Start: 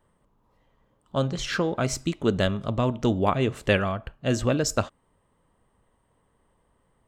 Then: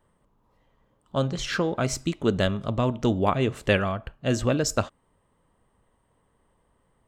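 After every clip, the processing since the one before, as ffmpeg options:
ffmpeg -i in.wav -af anull out.wav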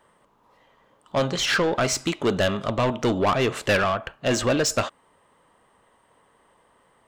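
ffmpeg -i in.wav -filter_complex "[0:a]asplit=2[link_01][link_02];[link_02]highpass=frequency=720:poles=1,volume=23dB,asoftclip=type=tanh:threshold=-7.5dB[link_03];[link_01][link_03]amix=inputs=2:normalize=0,lowpass=frequency=5700:poles=1,volume=-6dB,volume=-4.5dB" out.wav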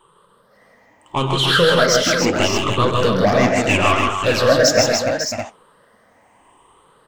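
ffmpeg -i in.wav -filter_complex "[0:a]afftfilt=real='re*pow(10,17/40*sin(2*PI*(0.65*log(max(b,1)*sr/1024/100)/log(2)-(0.75)*(pts-256)/sr)))':imag='im*pow(10,17/40*sin(2*PI*(0.65*log(max(b,1)*sr/1024/100)/log(2)-(0.75)*(pts-256)/sr)))':win_size=1024:overlap=0.75,flanger=delay=2:depth=9.8:regen=74:speed=1.7:shape=triangular,asplit=2[link_01][link_02];[link_02]aecho=0:1:99|133|157|290|547|610:0.178|0.447|0.562|0.531|0.355|0.398[link_03];[link_01][link_03]amix=inputs=2:normalize=0,volume=5.5dB" out.wav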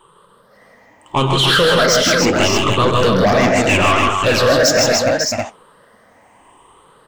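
ffmpeg -i in.wav -af "apsyclip=12.5dB,volume=-8dB" out.wav

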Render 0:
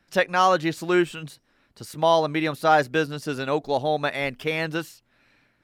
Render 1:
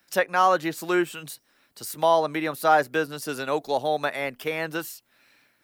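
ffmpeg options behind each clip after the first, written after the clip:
ffmpeg -i in.wav -filter_complex "[0:a]acrossover=split=100|890|2000[link_01][link_02][link_03][link_04];[link_04]acompressor=threshold=-42dB:ratio=6[link_05];[link_01][link_02][link_03][link_05]amix=inputs=4:normalize=0,aemphasis=mode=production:type=bsi" out.wav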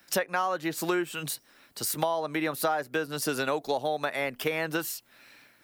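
ffmpeg -i in.wav -af "acompressor=threshold=-30dB:ratio=10,volume=5.5dB" out.wav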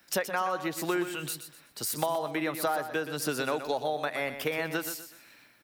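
ffmpeg -i in.wav -af "aecho=1:1:124|248|372|496:0.316|0.104|0.0344|0.0114,volume=-2dB" out.wav

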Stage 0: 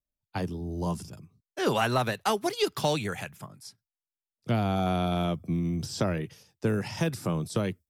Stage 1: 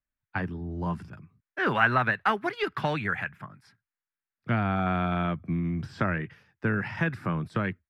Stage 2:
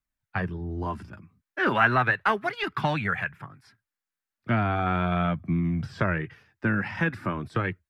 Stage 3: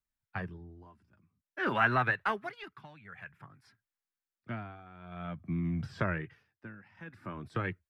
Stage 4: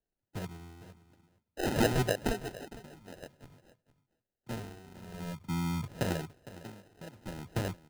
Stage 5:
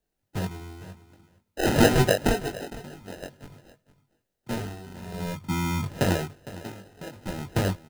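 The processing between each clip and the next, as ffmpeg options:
ffmpeg -i in.wav -af "firequalizer=gain_entry='entry(240,0);entry(480,-5);entry(1600,11);entry(3200,-6);entry(6300,-21)':delay=0.05:min_phase=1" out.wav
ffmpeg -i in.wav -af "flanger=delay=0.8:depth=3.2:regen=-46:speed=0.36:shape=triangular,volume=6dB" out.wav
ffmpeg -i in.wav -af "tremolo=f=0.51:d=0.92,volume=-5.5dB" out.wav
ffmpeg -i in.wav -af "acrusher=samples=39:mix=1:aa=0.000001,aecho=1:1:458:0.15" out.wav
ffmpeg -i in.wav -filter_complex "[0:a]asplit=2[link_01][link_02];[link_02]adelay=21,volume=-5dB[link_03];[link_01][link_03]amix=inputs=2:normalize=0,volume=7.5dB" out.wav

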